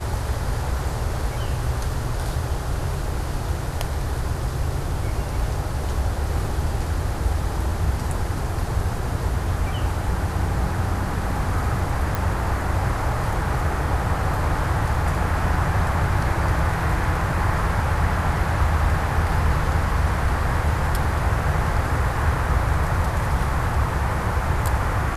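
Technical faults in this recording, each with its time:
12.15 pop

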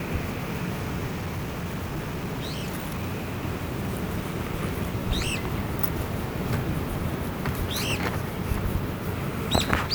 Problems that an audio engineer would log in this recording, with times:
1.1–3.45 clipped -26.5 dBFS

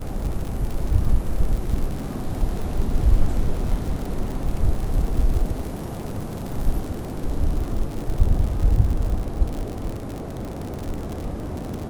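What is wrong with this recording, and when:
crackle 78/s -27 dBFS

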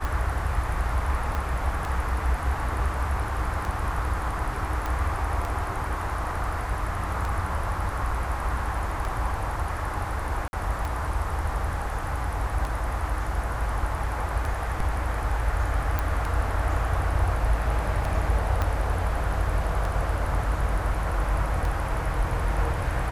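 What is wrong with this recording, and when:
tick 33 1/3 rpm
1.35 pop -17 dBFS
4.86 pop
10.48–10.53 gap 51 ms
15.99 pop
18.62 pop -13 dBFS

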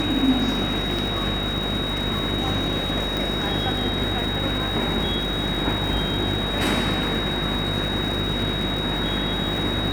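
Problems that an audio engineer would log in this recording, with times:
buzz 50 Hz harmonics 14 -29 dBFS
crackle 470/s -31 dBFS
tone 3800 Hz -27 dBFS
3.17 pop

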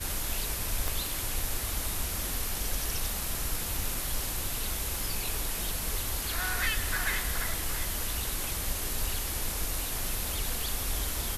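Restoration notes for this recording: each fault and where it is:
0.88 pop

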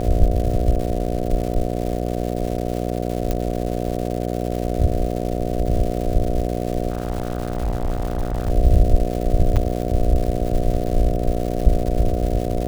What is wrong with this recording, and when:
buzz 60 Hz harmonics 12 -24 dBFS
crackle 320/s -27 dBFS
3.31 pop -9 dBFS
6.9–8.51 clipped -17.5 dBFS
9.56–9.57 gap 7.1 ms

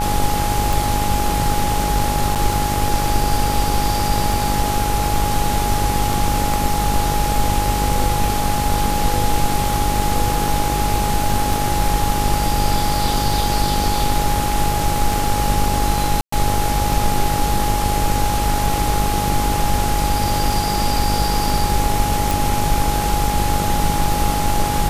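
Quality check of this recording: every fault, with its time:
buzz 50 Hz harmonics 28 -23 dBFS
tick 33 1/3 rpm
tone 830 Hz -21 dBFS
2.35–2.36 gap 7.6 ms
16.21–16.32 gap 0.114 s
22.31 pop

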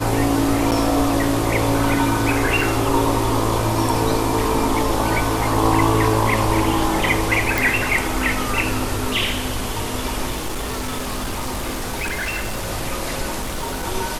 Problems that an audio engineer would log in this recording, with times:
0.71–0.72 gap 8 ms
2.61 gap 3.3 ms
7.58 pop
10.3–12.69 clipped -21 dBFS
13.41–13.85 clipped -22 dBFS

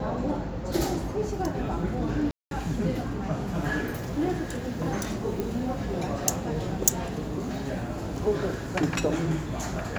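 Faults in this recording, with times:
2.31–2.51 gap 0.202 s
5.4 pop

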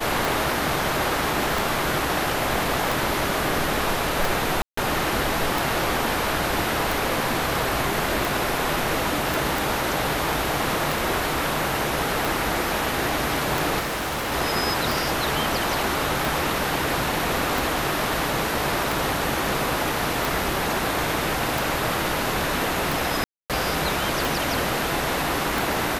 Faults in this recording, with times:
tick 45 rpm
4.62–4.77 gap 0.154 s
9.34 pop
13.79–14.33 clipped -24 dBFS
23.24–23.5 gap 0.257 s

